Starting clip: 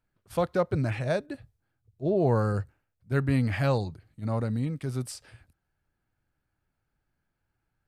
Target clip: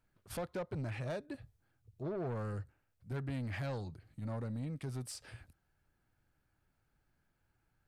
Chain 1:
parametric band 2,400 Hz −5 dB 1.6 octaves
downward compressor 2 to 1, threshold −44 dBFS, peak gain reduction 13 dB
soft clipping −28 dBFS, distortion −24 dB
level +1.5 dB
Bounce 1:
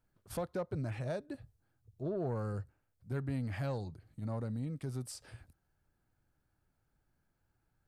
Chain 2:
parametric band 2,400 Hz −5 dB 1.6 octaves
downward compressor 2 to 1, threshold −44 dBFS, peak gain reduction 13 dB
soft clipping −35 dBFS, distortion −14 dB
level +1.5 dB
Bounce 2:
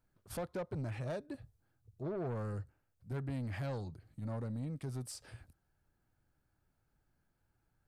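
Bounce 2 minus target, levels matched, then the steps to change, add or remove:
2,000 Hz band −3.0 dB
remove: parametric band 2,400 Hz −5 dB 1.6 octaves

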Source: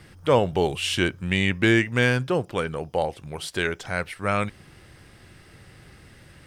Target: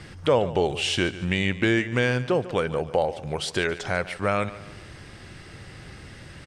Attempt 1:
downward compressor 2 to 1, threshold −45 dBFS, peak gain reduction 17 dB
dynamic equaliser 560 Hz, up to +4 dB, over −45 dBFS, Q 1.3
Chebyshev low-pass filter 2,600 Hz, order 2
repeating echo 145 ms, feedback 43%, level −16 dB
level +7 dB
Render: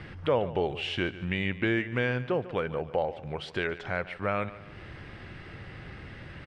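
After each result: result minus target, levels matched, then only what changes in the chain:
8,000 Hz band −16.0 dB; downward compressor: peak gain reduction +5.5 dB
change: Chebyshev low-pass filter 7,000 Hz, order 2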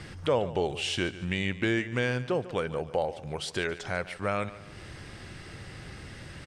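downward compressor: peak gain reduction +5.5 dB
change: downward compressor 2 to 1, threshold −34 dBFS, peak gain reduction 11.5 dB

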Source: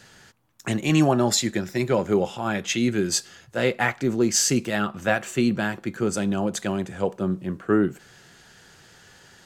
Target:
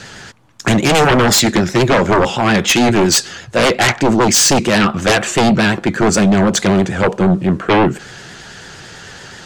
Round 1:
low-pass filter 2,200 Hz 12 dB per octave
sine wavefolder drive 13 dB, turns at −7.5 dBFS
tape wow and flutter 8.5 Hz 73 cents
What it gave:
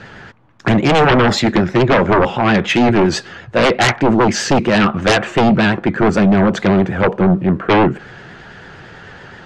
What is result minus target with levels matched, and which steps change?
8,000 Hz band −12.0 dB
change: low-pass filter 7,800 Hz 12 dB per octave

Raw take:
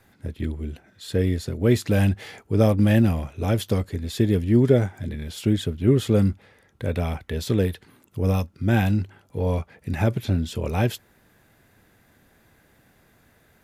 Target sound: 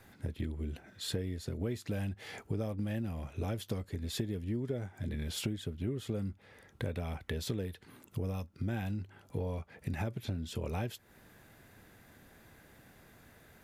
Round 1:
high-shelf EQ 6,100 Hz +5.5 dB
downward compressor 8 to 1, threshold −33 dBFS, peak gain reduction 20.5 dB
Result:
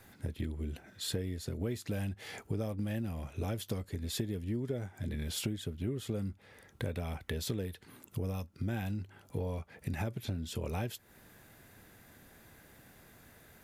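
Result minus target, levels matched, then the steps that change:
8,000 Hz band +3.0 dB
remove: high-shelf EQ 6,100 Hz +5.5 dB

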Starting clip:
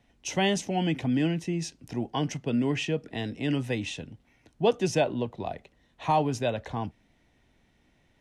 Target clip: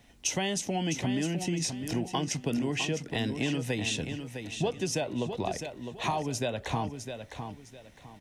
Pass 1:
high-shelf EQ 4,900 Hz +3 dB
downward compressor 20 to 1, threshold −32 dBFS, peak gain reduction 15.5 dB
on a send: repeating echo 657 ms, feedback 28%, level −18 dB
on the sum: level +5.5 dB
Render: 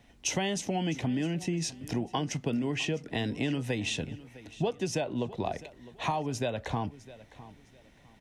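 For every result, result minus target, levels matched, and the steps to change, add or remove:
echo-to-direct −10 dB; 8,000 Hz band −3.0 dB
change: repeating echo 657 ms, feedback 28%, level −8 dB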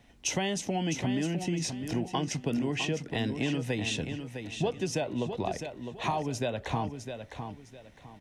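8,000 Hz band −2.5 dB
change: high-shelf EQ 4,900 Hz +10.5 dB

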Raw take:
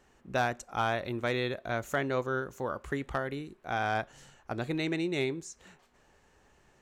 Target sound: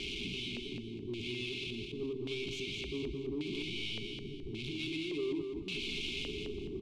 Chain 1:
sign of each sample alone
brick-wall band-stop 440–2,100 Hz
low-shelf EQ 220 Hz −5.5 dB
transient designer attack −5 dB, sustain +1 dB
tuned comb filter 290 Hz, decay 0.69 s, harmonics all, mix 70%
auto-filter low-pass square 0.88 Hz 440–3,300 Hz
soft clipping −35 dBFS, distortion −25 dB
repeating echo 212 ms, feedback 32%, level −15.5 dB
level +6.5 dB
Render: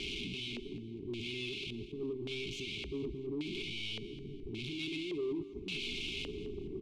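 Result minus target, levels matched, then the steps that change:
echo-to-direct −10.5 dB
change: repeating echo 212 ms, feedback 32%, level −5 dB

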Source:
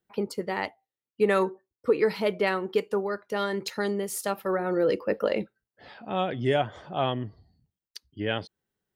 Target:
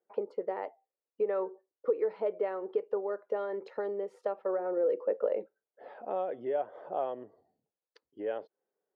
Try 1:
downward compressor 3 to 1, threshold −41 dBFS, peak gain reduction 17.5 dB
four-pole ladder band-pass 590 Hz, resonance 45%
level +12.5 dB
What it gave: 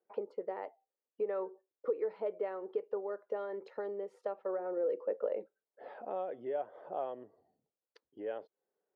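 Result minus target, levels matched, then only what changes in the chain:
downward compressor: peak gain reduction +4.5 dB
change: downward compressor 3 to 1, threshold −34 dBFS, peak gain reduction 13 dB

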